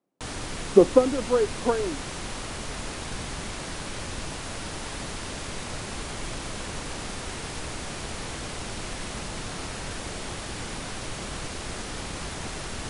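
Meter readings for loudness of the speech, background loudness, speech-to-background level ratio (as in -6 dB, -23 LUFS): -22.5 LUFS, -34.5 LUFS, 12.0 dB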